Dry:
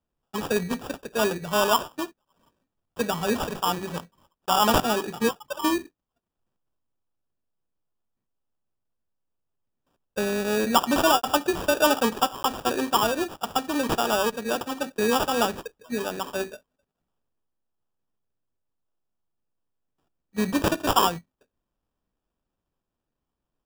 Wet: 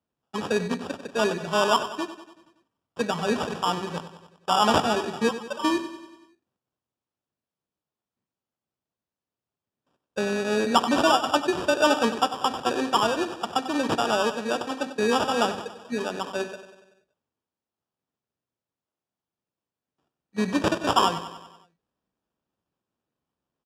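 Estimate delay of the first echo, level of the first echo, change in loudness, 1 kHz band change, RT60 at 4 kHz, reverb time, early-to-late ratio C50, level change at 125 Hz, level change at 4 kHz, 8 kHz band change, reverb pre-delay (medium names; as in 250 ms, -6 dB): 95 ms, -12.5 dB, 0.0 dB, +0.5 dB, no reverb, no reverb, no reverb, -0.5 dB, 0.0 dB, -4.0 dB, no reverb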